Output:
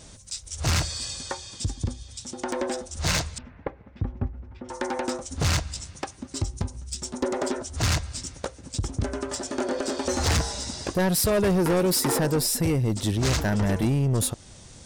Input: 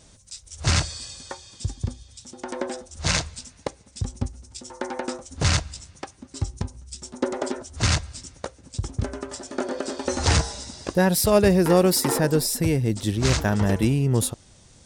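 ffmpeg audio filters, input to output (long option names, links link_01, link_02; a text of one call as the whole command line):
ffmpeg -i in.wav -filter_complex "[0:a]asplit=2[link_01][link_02];[link_02]acompressor=threshold=-31dB:ratio=6,volume=-1dB[link_03];[link_01][link_03]amix=inputs=2:normalize=0,asoftclip=type=tanh:threshold=-18dB,asettb=1/sr,asplit=3[link_04][link_05][link_06];[link_04]atrim=end=3.384[link_07];[link_05]atrim=start=3.38:end=4.69,asetpts=PTS-STARTPTS,afade=type=in:duration=0.004:curve=qsin,afade=type=out:start_time=1.306:duration=0.004:curve=qsin,lowpass=frequency=2100:width=0.5412,lowpass=frequency=2100:width=1.3066[link_08];[link_06]atrim=start=4.686[link_09];[link_07][link_08]acrossfade=duration=0.004:curve1=hsin:curve2=qsin[link_10];[link_10][link_09]acrossfade=duration=0.004:curve1=qsin:curve2=hsin" out.wav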